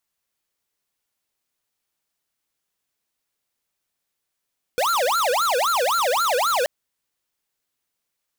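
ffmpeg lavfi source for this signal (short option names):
-f lavfi -i "aevalsrc='0.0944*(2*lt(mod((935*t-455/(2*PI*3.8)*sin(2*PI*3.8*t)),1),0.5)-1)':d=1.88:s=44100"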